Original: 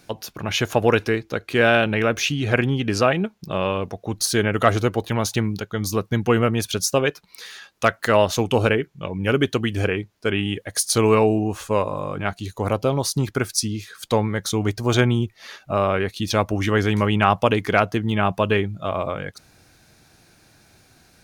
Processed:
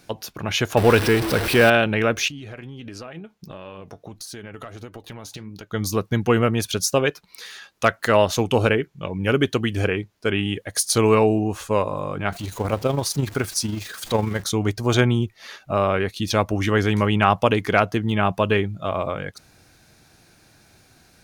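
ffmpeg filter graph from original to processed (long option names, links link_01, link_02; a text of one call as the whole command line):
ffmpeg -i in.wav -filter_complex "[0:a]asettb=1/sr,asplit=3[link_01][link_02][link_03];[link_01]atrim=end=0.774[link_04];[link_02]atrim=start=0.77:end=1.7,asetpts=PTS-STARTPTS,afade=type=in:duration=0.004:curve=qsin,afade=type=out:start_time=0.926:duration=0.004:curve=qsin,aeval=exprs='val(0)+0.5*0.119*sgn(val(0))':channel_layout=same,equalizer=frequency=6800:width_type=o:width=0.2:gain=-11[link_05];[link_03]atrim=start=1.696[link_06];[link_04][link_05]acrossfade=duration=0.004:curve1=hsin:curve2=qsin[link_07];[link_07][link_06]acrossfade=duration=0.004:curve1=qsin:curve2=hsin,asettb=1/sr,asplit=3[link_08][link_09][link_10];[link_08]atrim=end=2.284[link_11];[link_09]atrim=start=2.28:end=5.71,asetpts=PTS-STARTPTS,afade=type=in:duration=0.004:curve=qsin,afade=type=out:start_time=3.426:duration=0.004:curve=qsin,acompressor=threshold=-28dB:ratio=12:attack=3.2:release=140:knee=1:detection=peak,flanger=delay=3.1:depth=3.9:regen=75:speed=1.5:shape=sinusoidal[link_12];[link_10]atrim=start=5.706[link_13];[link_11][link_12]acrossfade=duration=0.004:curve1=hsin:curve2=qsin[link_14];[link_14][link_13]acrossfade=duration=0.004:curve1=qsin:curve2=hsin,asettb=1/sr,asplit=3[link_15][link_16][link_17];[link_15]atrim=end=12.324[link_18];[link_16]atrim=start=12.32:end=14.44,asetpts=PTS-STARTPTS,afade=type=in:duration=0.004:curve=qsin,afade=type=out:start_time=2.116:duration=0.004:curve=qsin,aeval=exprs='val(0)+0.5*0.0251*sgn(val(0))':channel_layout=same,tremolo=f=24:d=0.462[link_19];[link_17]atrim=start=14.436[link_20];[link_18][link_19]acrossfade=duration=0.004:curve1=hsin:curve2=qsin[link_21];[link_21][link_20]acrossfade=duration=0.004:curve1=qsin:curve2=hsin" out.wav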